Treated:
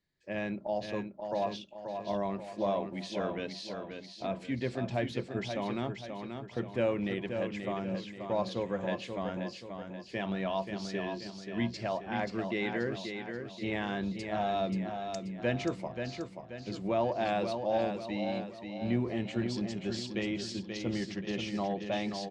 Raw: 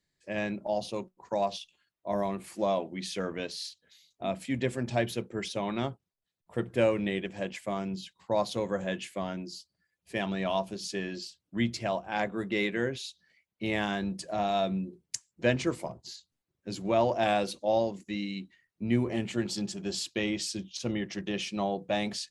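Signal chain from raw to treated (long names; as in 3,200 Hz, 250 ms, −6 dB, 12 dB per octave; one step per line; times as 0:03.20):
in parallel at −1 dB: brickwall limiter −23 dBFS, peak gain reduction 11 dB
on the sum: high-frequency loss of the air 120 metres
repeating echo 532 ms, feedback 46%, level −6.5 dB
level −7 dB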